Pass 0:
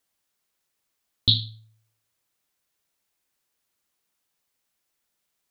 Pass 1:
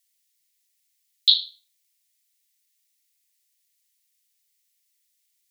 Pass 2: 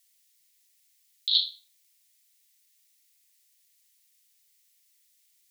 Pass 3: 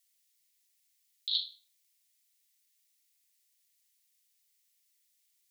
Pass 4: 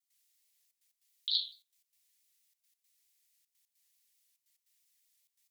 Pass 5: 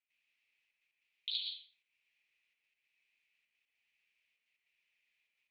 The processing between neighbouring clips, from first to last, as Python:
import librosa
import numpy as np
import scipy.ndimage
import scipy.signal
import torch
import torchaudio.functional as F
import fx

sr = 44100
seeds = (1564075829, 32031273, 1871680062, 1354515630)

y1 = scipy.signal.sosfilt(scipy.signal.ellip(4, 1.0, 60, 1900.0, 'highpass', fs=sr, output='sos'), x)
y1 = fx.high_shelf(y1, sr, hz=3300.0, db=10.5)
y1 = F.gain(torch.from_numpy(y1), -2.5).numpy()
y2 = fx.over_compress(y1, sr, threshold_db=-23.0, ratio=-1.0)
y3 = fx.end_taper(y2, sr, db_per_s=170.0)
y3 = F.gain(torch.from_numpy(y3), -7.0).numpy()
y4 = fx.step_gate(y3, sr, bpm=148, pattern='.xxxxxx.x', floor_db=-12.0, edge_ms=4.5)
y4 = fx.vibrato_shape(y4, sr, shape='saw_down', rate_hz=4.6, depth_cents=100.0)
y5 = fx.lowpass_res(y4, sr, hz=2500.0, q=7.4)
y5 = fx.rev_plate(y5, sr, seeds[0], rt60_s=0.68, hf_ratio=0.4, predelay_ms=100, drr_db=1.0)
y5 = F.gain(torch.from_numpy(y5), -4.0).numpy()